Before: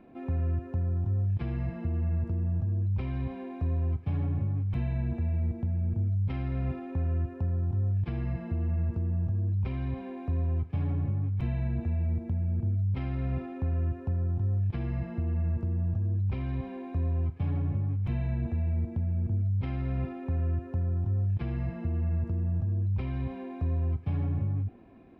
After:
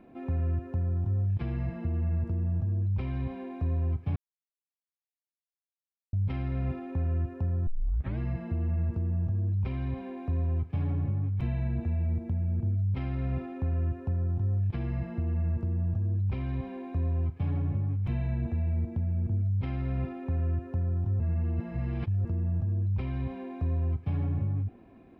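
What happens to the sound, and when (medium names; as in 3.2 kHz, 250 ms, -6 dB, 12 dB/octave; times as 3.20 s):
4.16–6.13 s: mute
7.67 s: tape start 0.51 s
21.20–22.25 s: reverse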